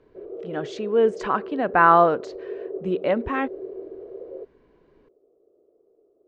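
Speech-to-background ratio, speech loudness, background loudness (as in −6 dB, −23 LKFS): 15.0 dB, −21.5 LKFS, −36.5 LKFS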